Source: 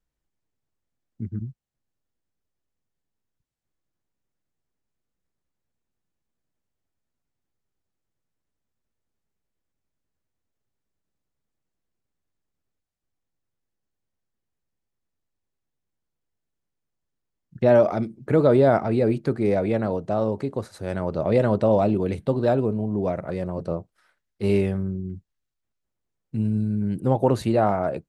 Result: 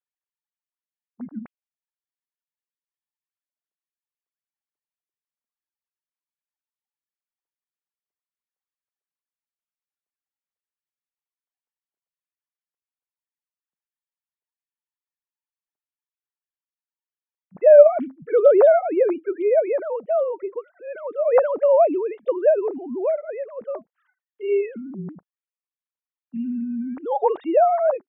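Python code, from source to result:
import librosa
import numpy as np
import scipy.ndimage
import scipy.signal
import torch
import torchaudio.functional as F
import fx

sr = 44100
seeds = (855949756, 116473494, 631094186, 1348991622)

y = fx.sine_speech(x, sr)
y = fx.dynamic_eq(y, sr, hz=730.0, q=1.4, threshold_db=-33.0, ratio=4.0, max_db=7)
y = y * 10.0 ** (-1.5 / 20.0)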